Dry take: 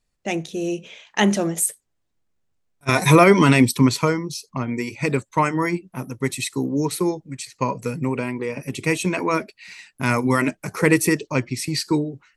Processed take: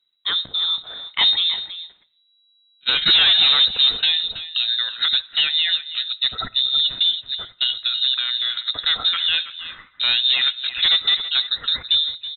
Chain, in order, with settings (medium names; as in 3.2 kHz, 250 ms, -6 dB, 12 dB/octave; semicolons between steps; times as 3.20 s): bass shelf 440 Hz +4.5 dB; waveshaping leveller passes 1; in parallel at -2 dB: compression, threshold -24 dBFS, peak gain reduction 18.5 dB; on the sum: hard clipper -6 dBFS, distortion -14 dB; delay 326 ms -13.5 dB; on a send at -22 dB: reverberation RT60 0.85 s, pre-delay 15 ms; on the sum: frequency inversion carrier 3.9 kHz; trim -6 dB